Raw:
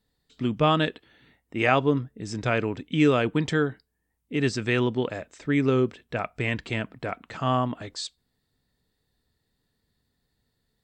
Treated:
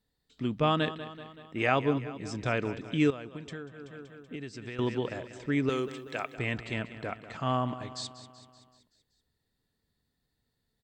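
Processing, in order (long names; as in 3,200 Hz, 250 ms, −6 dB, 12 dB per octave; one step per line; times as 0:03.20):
0:05.69–0:06.35: RIAA equalisation recording
repeating echo 190 ms, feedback 58%, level −14 dB
0:03.10–0:04.79: downward compressor 16 to 1, threshold −32 dBFS, peak gain reduction 15 dB
level −5 dB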